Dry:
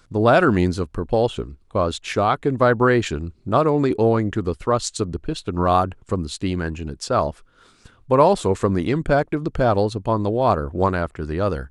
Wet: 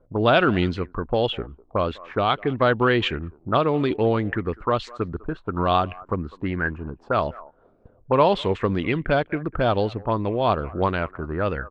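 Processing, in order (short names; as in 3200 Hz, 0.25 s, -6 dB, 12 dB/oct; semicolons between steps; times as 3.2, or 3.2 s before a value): speakerphone echo 0.2 s, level -22 dB; envelope low-pass 560–3200 Hz up, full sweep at -15.5 dBFS; gain -3.5 dB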